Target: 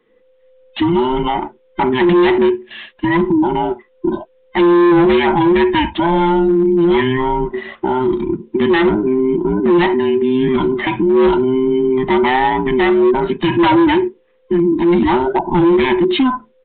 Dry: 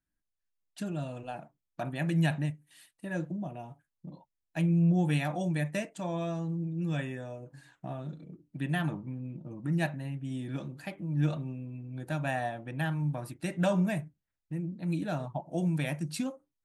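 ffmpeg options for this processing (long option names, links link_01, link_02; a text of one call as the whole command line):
ffmpeg -i in.wav -af "afftfilt=real='real(if(between(b,1,1008),(2*floor((b-1)/24)+1)*24-b,b),0)':imag='imag(if(between(b,1,1008),(2*floor((b-1)/24)+1)*24-b,b),0)*if(between(b,1,1008),-1,1)':win_size=2048:overlap=0.75,aresample=8000,asoftclip=type=hard:threshold=-28.5dB,aresample=44100,alimiter=level_in=35.5dB:limit=-1dB:release=50:level=0:latency=1,volume=-7dB" out.wav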